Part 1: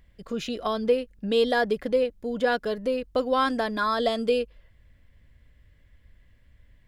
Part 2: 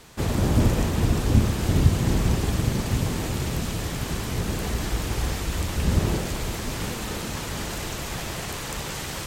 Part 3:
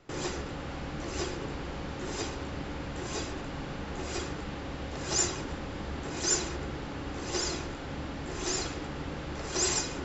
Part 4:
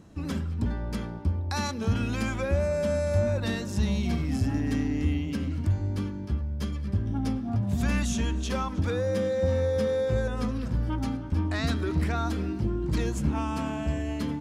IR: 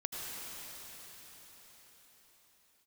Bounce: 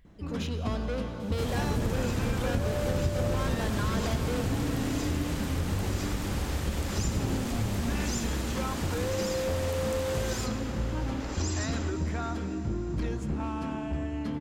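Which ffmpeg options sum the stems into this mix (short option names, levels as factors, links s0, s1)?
-filter_complex "[0:a]asoftclip=type=tanh:threshold=0.0355,volume=0.501,asplit=2[s0][s1];[s1]volume=0.596[s2];[1:a]adelay=1200,volume=0.376,asplit=2[s3][s4];[s4]volume=0.282[s5];[2:a]acompressor=threshold=0.0178:ratio=6,adelay=1850,volume=0.841,asplit=2[s6][s7];[s7]volume=0.355[s8];[3:a]aeval=exprs='clip(val(0),-1,0.0596)':c=same,highshelf=f=5000:g=-11.5,adelay=50,volume=0.562,asplit=2[s9][s10];[s10]volume=0.316[s11];[4:a]atrim=start_sample=2205[s12];[s2][s5][s8][s11]amix=inputs=4:normalize=0[s13];[s13][s12]afir=irnorm=-1:irlink=0[s14];[s0][s3][s6][s9][s14]amix=inputs=5:normalize=0,acompressor=threshold=0.0631:ratio=4"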